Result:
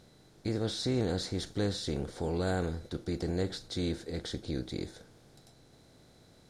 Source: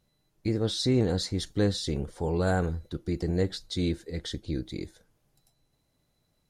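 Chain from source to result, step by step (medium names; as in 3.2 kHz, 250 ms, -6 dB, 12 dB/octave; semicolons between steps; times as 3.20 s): spectral levelling over time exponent 0.6; trim -7.5 dB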